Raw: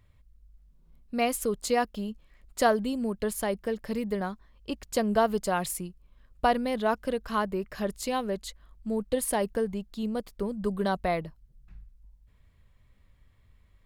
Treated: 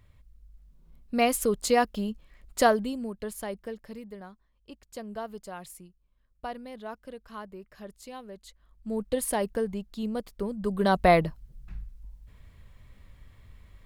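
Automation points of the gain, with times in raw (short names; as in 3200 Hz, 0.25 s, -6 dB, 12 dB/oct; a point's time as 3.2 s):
2.6 s +3 dB
3.13 s -6 dB
3.63 s -6 dB
4.12 s -13 dB
8.34 s -13 dB
9 s -0.5 dB
10.66 s -0.5 dB
11.09 s +9 dB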